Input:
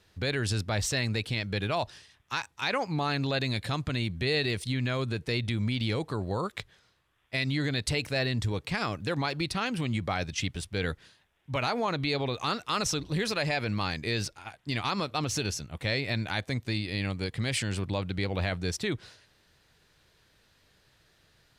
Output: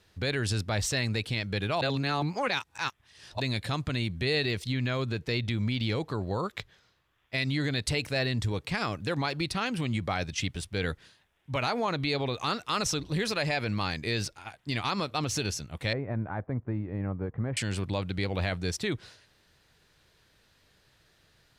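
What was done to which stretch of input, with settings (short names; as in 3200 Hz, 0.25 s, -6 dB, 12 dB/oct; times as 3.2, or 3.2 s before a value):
1.81–3.4 reverse
4.44–7.38 bell 9200 Hz -9 dB 0.34 oct
15.93–17.57 LPF 1300 Hz 24 dB/oct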